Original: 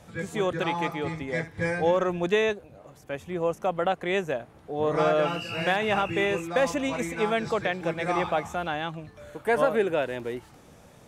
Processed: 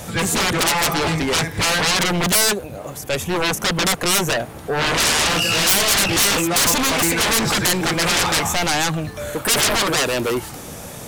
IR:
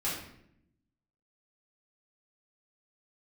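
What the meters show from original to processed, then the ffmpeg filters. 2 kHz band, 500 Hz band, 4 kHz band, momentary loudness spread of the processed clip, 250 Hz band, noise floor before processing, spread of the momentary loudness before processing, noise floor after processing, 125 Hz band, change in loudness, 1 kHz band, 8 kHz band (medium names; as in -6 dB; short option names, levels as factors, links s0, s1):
+10.5 dB, +1.5 dB, +19.5 dB, 10 LU, +8.0 dB, -53 dBFS, 11 LU, -35 dBFS, +10.0 dB, +9.5 dB, +7.0 dB, +28.0 dB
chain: -af "aeval=exprs='0.316*sin(PI/2*10*val(0)/0.316)':c=same,aemphasis=mode=production:type=50kf,volume=0.447"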